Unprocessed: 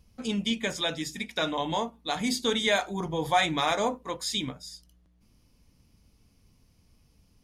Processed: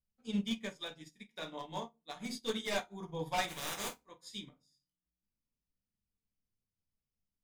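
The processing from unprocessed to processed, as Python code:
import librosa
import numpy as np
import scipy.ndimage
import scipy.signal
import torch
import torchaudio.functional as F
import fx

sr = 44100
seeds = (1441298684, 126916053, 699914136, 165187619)

p1 = fx.spec_flatten(x, sr, power=0.28, at=(3.47, 4.0), fade=0.02)
p2 = p1 + fx.room_flutter(p1, sr, wall_m=8.5, rt60_s=0.21, dry=0)
p3 = 10.0 ** (-19.5 / 20.0) * (np.abs((p2 / 10.0 ** (-19.5 / 20.0) + 3.0) % 4.0 - 2.0) - 1.0)
p4 = fx.room_shoebox(p3, sr, seeds[0], volume_m3=140.0, walls='furnished', distance_m=1.1)
p5 = fx.upward_expand(p4, sr, threshold_db=-38.0, expansion=2.5)
y = F.gain(torch.from_numpy(p5), -8.0).numpy()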